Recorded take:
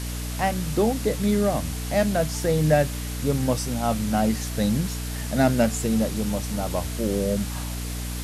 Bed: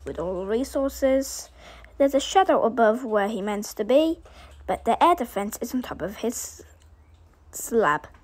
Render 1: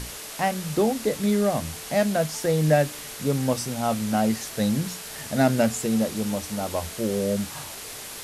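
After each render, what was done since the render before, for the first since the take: notches 60/120/180/240/300 Hz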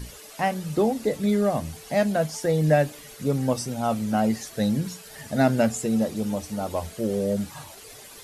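denoiser 11 dB, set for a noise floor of -38 dBFS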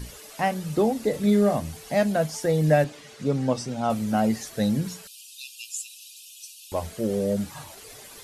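1.1–1.55 doubler 39 ms -7.5 dB; 2.84–3.9 BPF 100–6200 Hz; 5.07–6.72 brick-wall FIR high-pass 2400 Hz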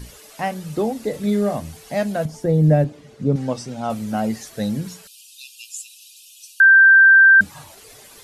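2.25–3.36 tilt shelf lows +9 dB, about 650 Hz; 6.6–7.41 bleep 1570 Hz -6.5 dBFS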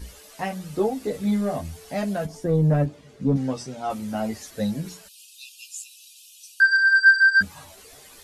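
soft clip -8.5 dBFS, distortion -18 dB; chorus voices 6, 0.4 Hz, delay 13 ms, depth 2.5 ms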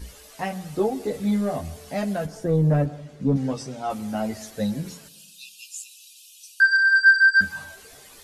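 plate-style reverb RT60 0.97 s, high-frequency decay 0.8×, pre-delay 0.1 s, DRR 18 dB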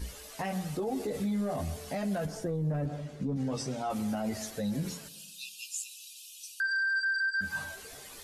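compressor, threshold -21 dBFS, peak gain reduction 10.5 dB; limiter -25.5 dBFS, peak gain reduction 10 dB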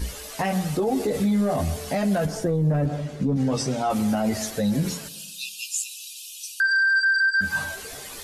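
gain +9.5 dB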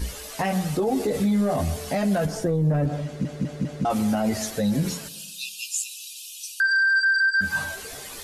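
3.05 stutter in place 0.20 s, 4 plays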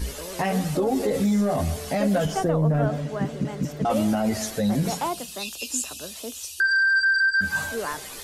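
add bed -10 dB

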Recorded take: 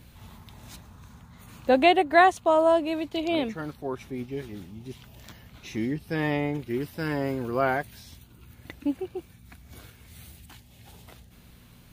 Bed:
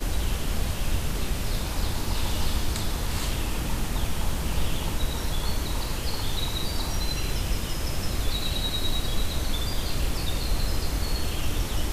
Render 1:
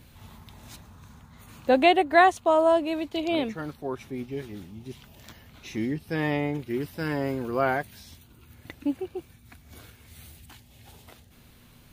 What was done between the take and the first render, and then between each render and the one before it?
de-hum 60 Hz, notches 3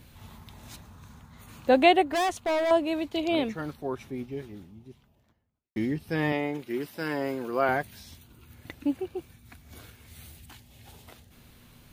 2.12–2.71 hard clip -24 dBFS; 3.72–5.76 studio fade out; 6.32–7.69 Bessel high-pass 260 Hz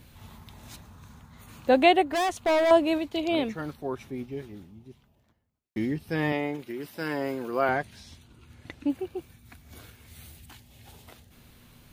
2.4–2.98 gain +3.5 dB; 6.55–6.97 compressor, threshold -31 dBFS; 7.69–8.9 LPF 8300 Hz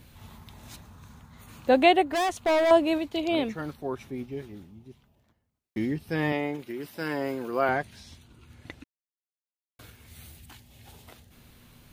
8.84–9.79 mute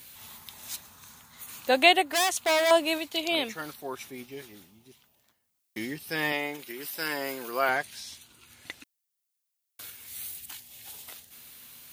tilt +4 dB/oct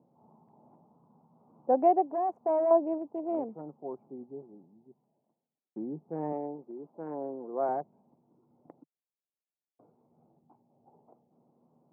Wiener smoothing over 25 samples; elliptic band-pass 150–860 Hz, stop band 60 dB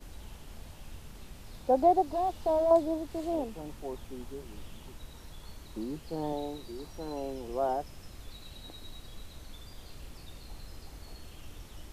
add bed -20 dB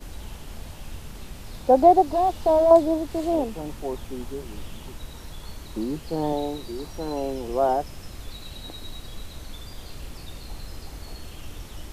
gain +8.5 dB

